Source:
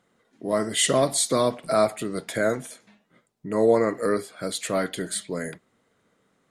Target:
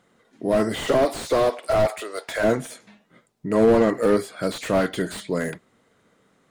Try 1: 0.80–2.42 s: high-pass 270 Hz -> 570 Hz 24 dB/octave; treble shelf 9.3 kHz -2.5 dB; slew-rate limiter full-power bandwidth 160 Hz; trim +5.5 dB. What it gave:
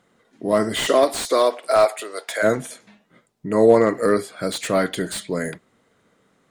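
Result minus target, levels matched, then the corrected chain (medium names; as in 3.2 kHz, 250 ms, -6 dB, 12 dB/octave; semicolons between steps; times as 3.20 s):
slew-rate limiter: distortion -9 dB
0.80–2.42 s: high-pass 270 Hz -> 570 Hz 24 dB/octave; treble shelf 9.3 kHz -2.5 dB; slew-rate limiter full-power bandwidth 56 Hz; trim +5.5 dB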